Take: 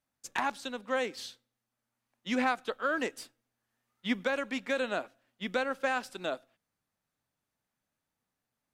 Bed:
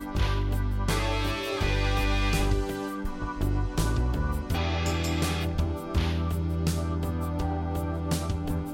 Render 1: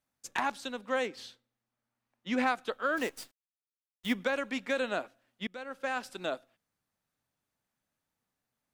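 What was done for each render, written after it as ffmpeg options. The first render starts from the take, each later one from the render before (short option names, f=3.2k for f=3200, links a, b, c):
-filter_complex "[0:a]asettb=1/sr,asplit=3[a][b][c];[a]atrim=end=1.074[d];[b]atrim=start=1.07:end=2.38,asetpts=PTS-STARTPTS,afade=t=in:d=0.004:c=qsin,afade=t=out:st=1.306:d=0.004:c=qsin,highshelf=f=4.4k:g=-9[e];[c]atrim=start=2.376[f];[d][e]acrossfade=d=0.004:c1=hsin:c2=qsin[g];[g][f]acrossfade=d=0.004:c1=qsin:c2=hsin,asplit=3[h][i][j];[h]afade=t=out:st=2.96:d=0.02[k];[i]acrusher=bits=8:dc=4:mix=0:aa=0.000001,afade=t=in:st=2.96:d=0.02,afade=t=out:st=4.12:d=0.02[l];[j]afade=t=in:st=4.12:d=0.02[m];[k][l][m]amix=inputs=3:normalize=0,asplit=2[n][o];[n]atrim=end=5.47,asetpts=PTS-STARTPTS,afade=t=out:st=5.466:d=0.004:c=hsin:silence=0.0794328[p];[o]atrim=start=5.47,asetpts=PTS-STARTPTS,afade=t=in:d=0.65:silence=0.0794328[q];[p][q]concat=n=2:v=0:a=1"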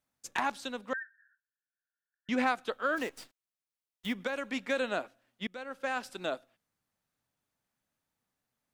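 -filter_complex "[0:a]asettb=1/sr,asplit=3[a][b][c];[a]atrim=end=0.934[d];[b]atrim=start=0.93:end=2.29,asetpts=PTS-STARTPTS,afade=t=in:d=0.004:c=qsin,afade=t=out:st=1.356:d=0.004:c=qsin,asuperpass=centerf=1600:order=20:qfactor=3.6[e];[c]atrim=start=2.286[f];[d][e]acrossfade=d=0.004:c1=hsin:c2=qsin[g];[g][f]acrossfade=d=0.004:c1=qsin:c2=hsin,asettb=1/sr,asplit=3[h][i][j];[h]atrim=end=2.944[k];[i]atrim=start=2.94:end=4.54,asetpts=PTS-STARTPTS,afade=t=in:d=0.004:c=qsin,afade=t=out:st=1.596:d=0.004:c=qsin,acrossover=split=3800|7900[l][m][n];[l]acompressor=threshold=-30dB:ratio=4[o];[m]acompressor=threshold=-52dB:ratio=4[p];[n]acompressor=threshold=-56dB:ratio=4[q];[o][p][q]amix=inputs=3:normalize=0[r];[j]atrim=start=4.536[s];[k][r]acrossfade=d=0.004:c1=hsin:c2=qsin[t];[t][s]acrossfade=d=0.004:c1=qsin:c2=hsin"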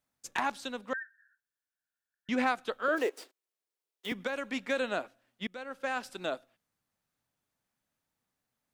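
-filter_complex "[0:a]asettb=1/sr,asplit=3[a][b][c];[a]atrim=end=2.884[d];[b]atrim=start=2.88:end=4.12,asetpts=PTS-STARTPTS,afade=t=in:d=0.004:c=qsin,afade=t=out:st=1.236:d=0.004:c=qsin,highpass=f=400:t=q:w=3.1[e];[c]atrim=start=4.116[f];[d][e]acrossfade=d=0.004:c1=hsin:c2=qsin[g];[g][f]acrossfade=d=0.004:c1=qsin:c2=hsin"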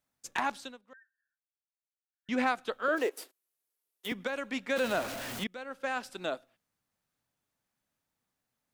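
-filter_complex "[0:a]asettb=1/sr,asplit=3[a][b][c];[a]atrim=end=3.114[d];[b]atrim=start=3.11:end=4.08,asetpts=PTS-STARTPTS,afade=t=in:d=0.004:c=qsin,afade=t=out:st=0.966:d=0.004:c=qsin,equalizer=f=12k:t=o:w=0.77:g=12[e];[c]atrim=start=4.076[f];[d][e]acrossfade=d=0.004:c1=hsin:c2=qsin[g];[g][f]acrossfade=d=0.004:c1=qsin:c2=hsin,asettb=1/sr,asplit=3[h][i][j];[h]atrim=end=4.764[k];[i]atrim=start=4.76:end=5.44,asetpts=PTS-STARTPTS,afade=t=in:d=0.004:c=qsin,afade=t=out:st=0.676:d=0.004:c=qsin,aeval=exprs='val(0)+0.5*0.0224*sgn(val(0))':c=same[l];[j]atrim=start=5.436[m];[k][l]acrossfade=d=0.004:c1=hsin:c2=qsin[n];[n][m]acrossfade=d=0.004:c1=qsin:c2=hsin,asplit=3[o][p][q];[o]atrim=end=0.79,asetpts=PTS-STARTPTS,afade=t=out:st=0.56:d=0.23:silence=0.1[r];[p]atrim=start=0.79:end=2.13,asetpts=PTS-STARTPTS,volume=-20dB[s];[q]atrim=start=2.13,asetpts=PTS-STARTPTS,afade=t=in:d=0.23:silence=0.1[t];[r][s][t]concat=n=3:v=0:a=1"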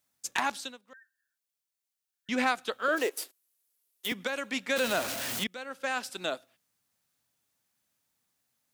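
-af "highpass=48,highshelf=f=2.6k:g=9.5"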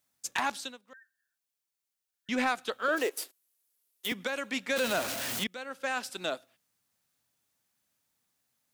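-af "asoftclip=type=tanh:threshold=-17.5dB"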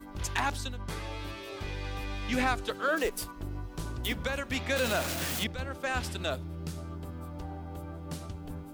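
-filter_complex "[1:a]volume=-11dB[a];[0:a][a]amix=inputs=2:normalize=0"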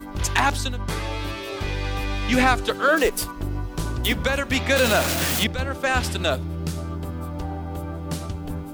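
-af "volume=10dB"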